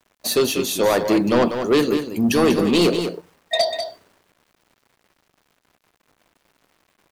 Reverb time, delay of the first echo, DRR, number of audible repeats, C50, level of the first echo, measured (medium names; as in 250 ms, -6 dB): no reverb, 193 ms, no reverb, 1, no reverb, -8.0 dB